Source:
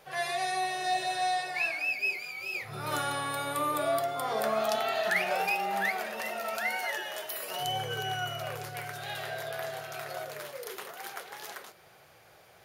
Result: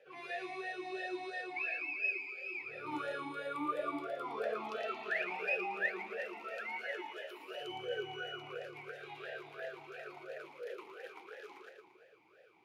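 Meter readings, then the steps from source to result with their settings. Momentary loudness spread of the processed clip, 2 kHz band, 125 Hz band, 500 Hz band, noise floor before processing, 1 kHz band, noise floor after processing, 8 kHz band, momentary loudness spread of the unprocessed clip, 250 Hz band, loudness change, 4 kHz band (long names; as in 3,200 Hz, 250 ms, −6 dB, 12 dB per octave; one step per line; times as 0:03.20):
13 LU, −6.5 dB, −17.0 dB, −7.5 dB, −58 dBFS, −11.5 dB, −63 dBFS, below −20 dB, 12 LU, −3.0 dB, −8.0 dB, −13.0 dB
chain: echo with a time of its own for lows and highs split 1,000 Hz, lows 170 ms, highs 114 ms, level −6 dB
formant filter swept between two vowels e-u 2.9 Hz
level +4 dB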